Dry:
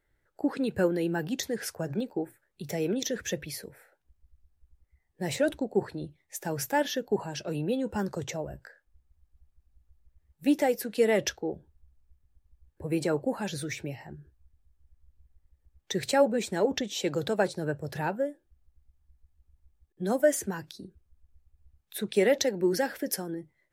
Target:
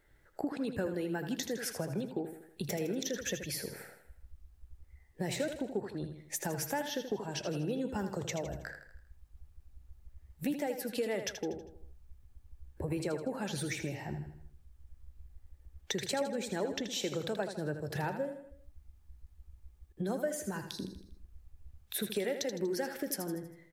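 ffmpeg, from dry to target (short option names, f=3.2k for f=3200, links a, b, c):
-af "acompressor=threshold=-43dB:ratio=4,aecho=1:1:80|160|240|320|400:0.355|0.17|0.0817|0.0392|0.0188,volume=7.5dB"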